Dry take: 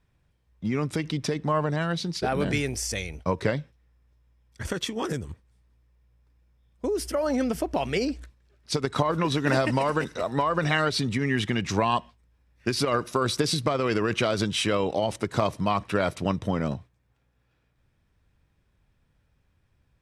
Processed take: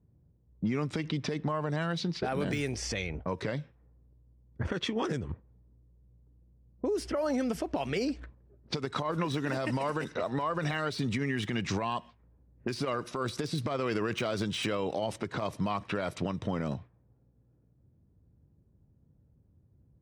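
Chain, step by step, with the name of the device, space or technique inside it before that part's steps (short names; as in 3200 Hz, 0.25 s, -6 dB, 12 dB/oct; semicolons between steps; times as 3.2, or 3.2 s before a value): low-pass opened by the level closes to 340 Hz, open at -22.5 dBFS; podcast mastering chain (HPF 79 Hz; de-esser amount 80%; compressor 4:1, threshold -37 dBFS, peak gain reduction 16 dB; limiter -28.5 dBFS, peak gain reduction 7 dB; gain +8 dB; MP3 96 kbps 44100 Hz)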